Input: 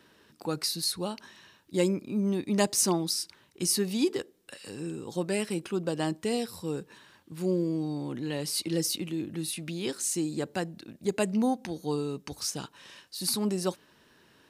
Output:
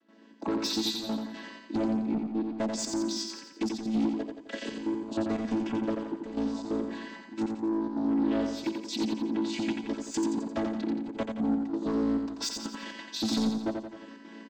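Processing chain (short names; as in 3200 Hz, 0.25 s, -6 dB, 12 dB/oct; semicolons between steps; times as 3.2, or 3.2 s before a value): chord vocoder major triad, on A3; AGC gain up to 14 dB; in parallel at -1.5 dB: limiter -10.5 dBFS, peak gain reduction 8 dB; on the sum: compressor 12:1, threshold -22 dBFS, peak gain reduction 17.5 dB; soft clip -24 dBFS, distortion -12 dB; step gate ".xxx.xxxxxx..x." 179 bpm -12 dB; on a send: feedback echo 87 ms, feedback 50%, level -5 dB; on the sum: Doppler distortion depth 0.11 ms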